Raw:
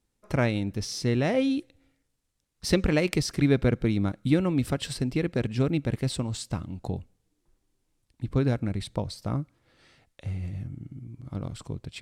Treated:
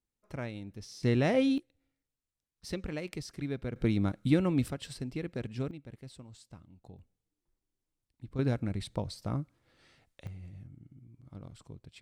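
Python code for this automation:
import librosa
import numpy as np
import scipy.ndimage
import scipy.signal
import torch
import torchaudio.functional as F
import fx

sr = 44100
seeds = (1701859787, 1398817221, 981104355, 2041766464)

y = fx.gain(x, sr, db=fx.steps((0.0, -14.0), (1.03, -2.0), (1.58, -14.0), (3.76, -3.0), (4.68, -10.0), (5.71, -20.0), (6.99, -13.5), (8.39, -4.5), (10.27, -13.0)))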